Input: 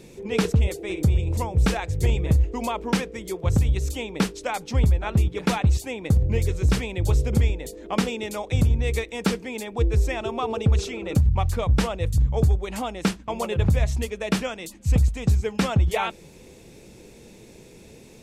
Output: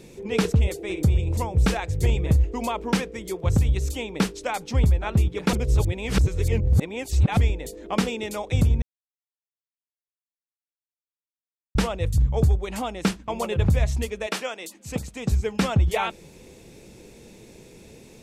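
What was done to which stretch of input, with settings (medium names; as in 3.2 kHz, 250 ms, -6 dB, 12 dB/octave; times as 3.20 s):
5.53–7.37 s: reverse
8.82–11.75 s: mute
14.26–15.31 s: high-pass 500 Hz -> 150 Hz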